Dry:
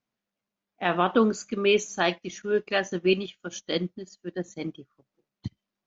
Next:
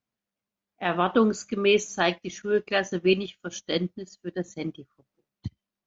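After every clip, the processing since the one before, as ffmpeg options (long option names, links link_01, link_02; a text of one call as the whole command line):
ffmpeg -i in.wav -af "equalizer=frequency=70:width_type=o:width=1.2:gain=7,dynaudnorm=framelen=270:gausssize=7:maxgain=4dB,volume=-3dB" out.wav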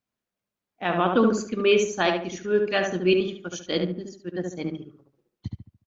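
ffmpeg -i in.wav -filter_complex "[0:a]asplit=2[link_01][link_02];[link_02]adelay=72,lowpass=frequency=1700:poles=1,volume=-3dB,asplit=2[link_03][link_04];[link_04]adelay=72,lowpass=frequency=1700:poles=1,volume=0.38,asplit=2[link_05][link_06];[link_06]adelay=72,lowpass=frequency=1700:poles=1,volume=0.38,asplit=2[link_07][link_08];[link_08]adelay=72,lowpass=frequency=1700:poles=1,volume=0.38,asplit=2[link_09][link_10];[link_10]adelay=72,lowpass=frequency=1700:poles=1,volume=0.38[link_11];[link_01][link_03][link_05][link_07][link_09][link_11]amix=inputs=6:normalize=0" out.wav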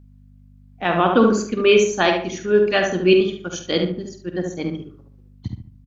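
ffmpeg -i in.wav -filter_complex "[0:a]aeval=exprs='val(0)+0.00282*(sin(2*PI*50*n/s)+sin(2*PI*2*50*n/s)/2+sin(2*PI*3*50*n/s)/3+sin(2*PI*4*50*n/s)/4+sin(2*PI*5*50*n/s)/5)':channel_layout=same,asplit=2[link_01][link_02];[link_02]adelay=48,volume=-10.5dB[link_03];[link_01][link_03]amix=inputs=2:normalize=0,volume=5dB" out.wav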